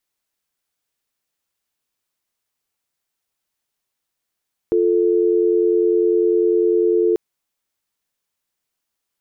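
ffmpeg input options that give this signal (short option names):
-f lavfi -i "aevalsrc='0.158*(sin(2*PI*350*t)+sin(2*PI*440*t))':d=2.44:s=44100"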